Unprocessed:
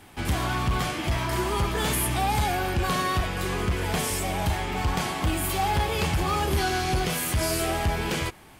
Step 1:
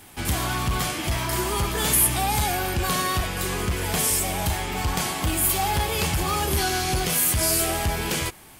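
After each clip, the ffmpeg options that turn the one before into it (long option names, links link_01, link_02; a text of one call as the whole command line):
ffmpeg -i in.wav -af "highshelf=frequency=5600:gain=12" out.wav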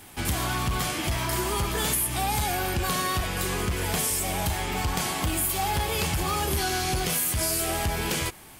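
ffmpeg -i in.wav -af "acompressor=threshold=-23dB:ratio=6" out.wav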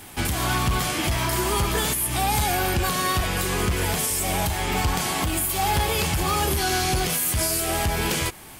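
ffmpeg -i in.wav -af "alimiter=limit=-19dB:level=0:latency=1:release=244,volume=5dB" out.wav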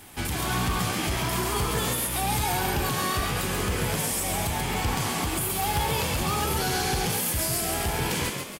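ffmpeg -i in.wav -filter_complex "[0:a]asplit=7[link_01][link_02][link_03][link_04][link_05][link_06][link_07];[link_02]adelay=136,afreqshift=59,volume=-4dB[link_08];[link_03]adelay=272,afreqshift=118,volume=-10.7dB[link_09];[link_04]adelay=408,afreqshift=177,volume=-17.5dB[link_10];[link_05]adelay=544,afreqshift=236,volume=-24.2dB[link_11];[link_06]adelay=680,afreqshift=295,volume=-31dB[link_12];[link_07]adelay=816,afreqshift=354,volume=-37.7dB[link_13];[link_01][link_08][link_09][link_10][link_11][link_12][link_13]amix=inputs=7:normalize=0,volume=-5dB" out.wav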